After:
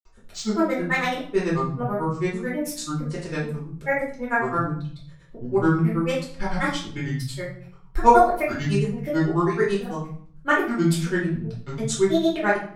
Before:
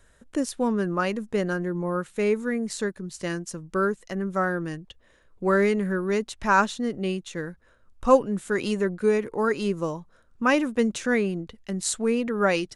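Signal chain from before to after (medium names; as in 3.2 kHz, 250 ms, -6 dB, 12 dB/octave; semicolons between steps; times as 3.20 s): band-stop 600 Hz, Q 12; granulator, grains 9.1 per s, pitch spread up and down by 7 st; reverberation RT60 0.55 s, pre-delay 3 ms, DRR -6.5 dB; trim -2 dB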